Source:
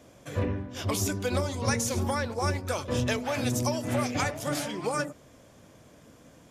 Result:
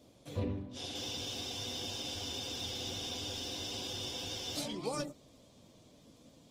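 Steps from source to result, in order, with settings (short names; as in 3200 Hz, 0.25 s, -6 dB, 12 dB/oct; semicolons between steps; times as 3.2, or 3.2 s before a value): fifteen-band EQ 250 Hz +3 dB, 1600 Hz -11 dB, 4000 Hz +10 dB; spectral freeze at 0.78, 3.78 s; gain -7 dB; Opus 20 kbps 48000 Hz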